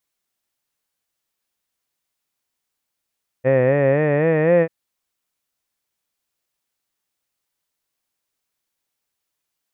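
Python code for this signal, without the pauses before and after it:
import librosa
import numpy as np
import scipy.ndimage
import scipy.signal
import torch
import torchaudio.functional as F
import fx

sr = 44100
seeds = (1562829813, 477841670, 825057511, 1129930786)

y = fx.vowel(sr, seeds[0], length_s=1.24, word='head', hz=126.0, glide_st=5.5, vibrato_hz=3.9, vibrato_st=0.9)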